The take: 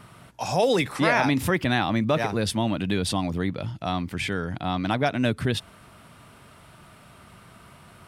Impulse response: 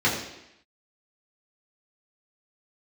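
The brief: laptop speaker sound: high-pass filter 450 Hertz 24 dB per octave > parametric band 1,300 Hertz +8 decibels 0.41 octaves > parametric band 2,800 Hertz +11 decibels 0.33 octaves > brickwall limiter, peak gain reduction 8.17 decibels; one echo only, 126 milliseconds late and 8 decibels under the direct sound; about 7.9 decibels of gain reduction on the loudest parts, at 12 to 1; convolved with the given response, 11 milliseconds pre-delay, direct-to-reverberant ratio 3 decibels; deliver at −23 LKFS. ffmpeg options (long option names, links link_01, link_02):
-filter_complex "[0:a]acompressor=threshold=-25dB:ratio=12,aecho=1:1:126:0.398,asplit=2[link_01][link_02];[1:a]atrim=start_sample=2205,adelay=11[link_03];[link_02][link_03]afir=irnorm=-1:irlink=0,volume=-19dB[link_04];[link_01][link_04]amix=inputs=2:normalize=0,highpass=frequency=450:width=0.5412,highpass=frequency=450:width=1.3066,equalizer=frequency=1300:width_type=o:width=0.41:gain=8,equalizer=frequency=2800:width_type=o:width=0.33:gain=11,volume=8dB,alimiter=limit=-12.5dB:level=0:latency=1"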